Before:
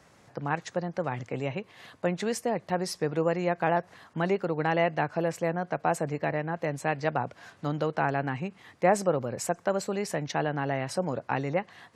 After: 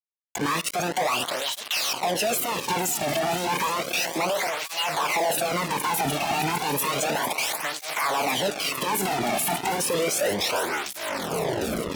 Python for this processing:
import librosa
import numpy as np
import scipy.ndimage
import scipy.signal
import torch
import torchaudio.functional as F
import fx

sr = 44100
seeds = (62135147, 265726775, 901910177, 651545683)

y = fx.tape_stop_end(x, sr, length_s=2.35)
y = fx.riaa(y, sr, side='recording')
y = fx.noise_reduce_blind(y, sr, reduce_db=13)
y = fx.peak_eq(y, sr, hz=7700.0, db=-7.5, octaves=2.5)
y = fx.level_steps(y, sr, step_db=19)
y = fx.leveller(y, sr, passes=2)
y = fx.over_compress(y, sr, threshold_db=-39.0, ratio=-0.5)
y = fx.formant_shift(y, sr, semitones=6)
y = fx.echo_swing(y, sr, ms=753, ratio=1.5, feedback_pct=70, wet_db=-15.5)
y = fx.fuzz(y, sr, gain_db=53.0, gate_db=-54.0)
y = y + 10.0 ** (-21.0 / 20.0) * np.pad(y, (int(76 * sr / 1000.0), 0))[:len(y)]
y = fx.flanger_cancel(y, sr, hz=0.32, depth_ms=2.1)
y = y * librosa.db_to_amplitude(-6.5)